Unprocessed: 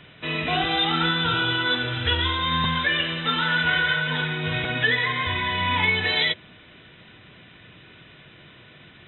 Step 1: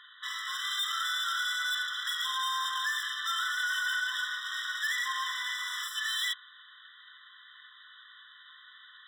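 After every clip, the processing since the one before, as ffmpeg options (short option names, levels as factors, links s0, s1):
-af "asoftclip=type=hard:threshold=0.0398,bandreject=f=60.89:t=h:w=4,bandreject=f=121.78:t=h:w=4,bandreject=f=182.67:t=h:w=4,bandreject=f=243.56:t=h:w=4,bandreject=f=304.45:t=h:w=4,bandreject=f=365.34:t=h:w=4,bandreject=f=426.23:t=h:w=4,bandreject=f=487.12:t=h:w=4,bandreject=f=548.01:t=h:w=4,bandreject=f=608.9:t=h:w=4,bandreject=f=669.79:t=h:w=4,bandreject=f=730.68:t=h:w=4,bandreject=f=791.57:t=h:w=4,bandreject=f=852.46:t=h:w=4,bandreject=f=913.35:t=h:w=4,bandreject=f=974.24:t=h:w=4,bandreject=f=1035.13:t=h:w=4,bandreject=f=1096.02:t=h:w=4,bandreject=f=1156.91:t=h:w=4,bandreject=f=1217.8:t=h:w=4,bandreject=f=1278.69:t=h:w=4,bandreject=f=1339.58:t=h:w=4,bandreject=f=1400.47:t=h:w=4,bandreject=f=1461.36:t=h:w=4,bandreject=f=1522.25:t=h:w=4,afftfilt=real='re*eq(mod(floor(b*sr/1024/1000),2),1)':imag='im*eq(mod(floor(b*sr/1024/1000),2),1)':win_size=1024:overlap=0.75"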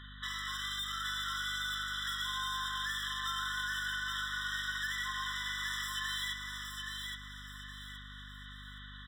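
-filter_complex "[0:a]acompressor=threshold=0.0158:ratio=6,asplit=2[s0][s1];[s1]aecho=0:1:821|1642|2463|3284:0.596|0.203|0.0689|0.0234[s2];[s0][s2]amix=inputs=2:normalize=0,aeval=exprs='val(0)+0.00316*(sin(2*PI*50*n/s)+sin(2*PI*2*50*n/s)/2+sin(2*PI*3*50*n/s)/3+sin(2*PI*4*50*n/s)/4+sin(2*PI*5*50*n/s)/5)':c=same"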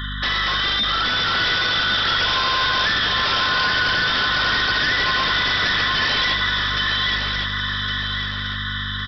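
-af "aresample=11025,aeval=exprs='0.0562*sin(PI/2*3.55*val(0)/0.0562)':c=same,aresample=44100,aecho=1:1:1111|2222|3333|4444:0.501|0.18|0.065|0.0234,volume=2.37"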